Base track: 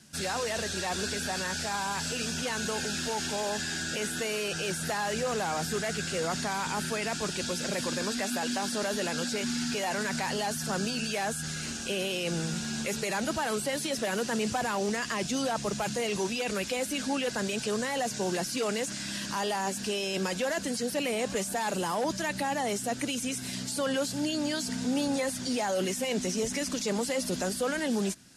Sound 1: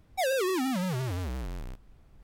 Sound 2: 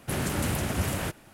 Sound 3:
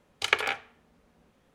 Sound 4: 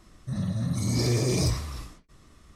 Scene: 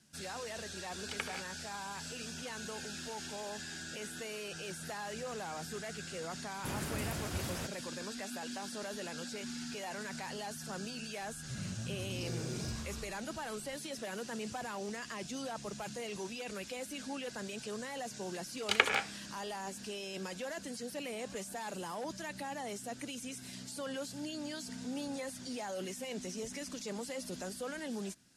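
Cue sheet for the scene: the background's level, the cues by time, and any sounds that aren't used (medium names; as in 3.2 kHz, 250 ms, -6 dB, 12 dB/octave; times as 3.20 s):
base track -11 dB
0.87 s: add 3 -15.5 dB
6.56 s: add 2 -10.5 dB
11.22 s: add 4 -10 dB + peak limiter -24.5 dBFS
18.47 s: add 3 -2.5 dB
not used: 1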